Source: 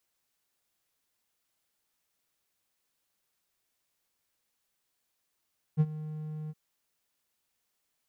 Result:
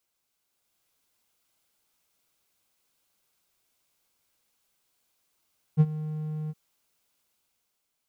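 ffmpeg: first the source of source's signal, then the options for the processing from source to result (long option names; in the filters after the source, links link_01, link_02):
-f lavfi -i "aevalsrc='0.15*(1-4*abs(mod(154*t+0.25,1)-0.5))':duration=0.767:sample_rate=44100,afade=type=in:duration=0.035,afade=type=out:start_time=0.035:duration=0.047:silence=0.141,afade=type=out:start_time=0.73:duration=0.037"
-af "dynaudnorm=framelen=100:gausssize=13:maxgain=5.5dB,bandreject=frequency=1800:width=8.7"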